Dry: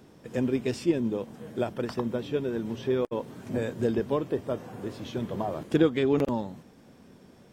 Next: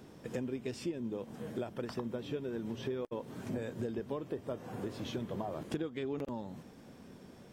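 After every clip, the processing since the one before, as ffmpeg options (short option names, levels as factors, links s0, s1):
-af "acompressor=threshold=0.0178:ratio=6"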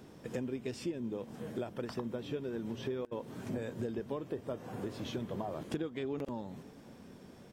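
-af "aecho=1:1:547:0.0631"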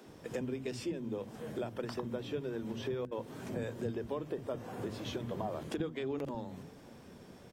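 -filter_complex "[0:a]acrossover=split=230[s0][s1];[s0]adelay=60[s2];[s2][s1]amix=inputs=2:normalize=0,volume=1.19"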